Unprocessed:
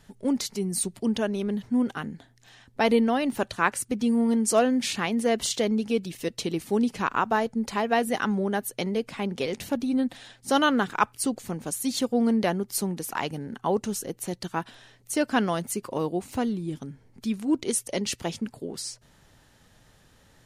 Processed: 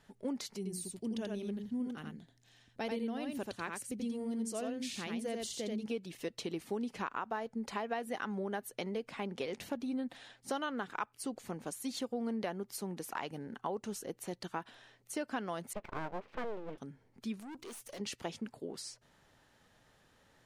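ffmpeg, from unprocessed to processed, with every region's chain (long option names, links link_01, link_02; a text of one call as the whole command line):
ffmpeg -i in.wav -filter_complex "[0:a]asettb=1/sr,asplit=3[link_01][link_02][link_03];[link_01]atrim=end=0.574[link_04];[link_02]atrim=start=0.57:end=5.86,asetpts=PTS-STARTPTS,afade=type=in:duration=0.004:curve=qsin,afade=type=out:start_time=5.286:duration=0.004:curve=qsin,equalizer=frequency=1100:width_type=o:width=2.5:gain=-11.5,aecho=1:1:84:0.631,atrim=end_sample=233289[link_05];[link_03]atrim=start=5.856[link_06];[link_04][link_05]acrossfade=duration=0.004:curve1=hsin:curve2=qsin[link_07];[link_07][link_06]acrossfade=duration=0.004:curve1=qsin:curve2=hsin,asettb=1/sr,asplit=3[link_08][link_09][link_10];[link_08]atrim=end=15.734[link_11];[link_09]atrim=start=15.73:end=16.78,asetpts=PTS-STARTPTS,afade=type=in:duration=0.004:curve=qsin,afade=type=out:start_time=1.046:duration=0.004:curve=qsin,lowpass=frequency=2700:width=0.5412,lowpass=frequency=2700:width=1.3066,aecho=1:1:4.7:0.31,atrim=end_sample=46305,aeval=exprs='abs(val(0))':channel_layout=same[link_12];[link_10]atrim=start=16.776[link_13];[link_11][link_12]acrossfade=duration=0.004:curve1=hsin:curve2=qsin[link_14];[link_14][link_13]acrossfade=duration=0.004:curve1=qsin:curve2=hsin,asettb=1/sr,asplit=3[link_15][link_16][link_17];[link_15]atrim=end=17.404[link_18];[link_16]atrim=start=17.4:end=18,asetpts=PTS-STARTPTS,afade=type=in:duration=0.004:curve=qsin,afade=type=out:start_time=0.596:duration=0.004:curve=qsin,acompressor=threshold=-29dB:ratio=1.5:attack=3.2:release=140:knee=1:detection=peak,highshelf=frequency=4100:gain=11.5,aeval=exprs='(tanh(70.8*val(0)+0.3)-tanh(0.3))/70.8':channel_layout=same[link_19];[link_17]atrim=start=17.996[link_20];[link_18][link_19]acrossfade=duration=0.004:curve1=hsin:curve2=qsin[link_21];[link_21][link_20]acrossfade=duration=0.004:curve1=qsin:curve2=hsin,lowshelf=frequency=210:gain=-10,acompressor=threshold=-29dB:ratio=5,highshelf=frequency=4000:gain=-8,volume=-4.5dB" out.wav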